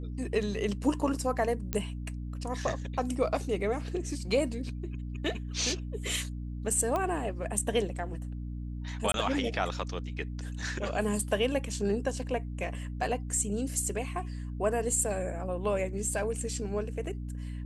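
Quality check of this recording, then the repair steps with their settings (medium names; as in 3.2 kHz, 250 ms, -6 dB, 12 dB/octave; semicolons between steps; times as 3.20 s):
hum 60 Hz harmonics 5 -37 dBFS
1.73 s: pop -14 dBFS
6.96 s: pop -18 dBFS
9.12–9.14 s: dropout 22 ms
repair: de-click; de-hum 60 Hz, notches 5; interpolate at 9.12 s, 22 ms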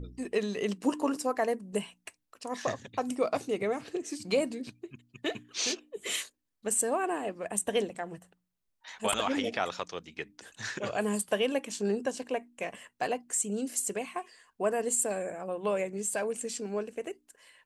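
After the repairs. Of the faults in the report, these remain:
nothing left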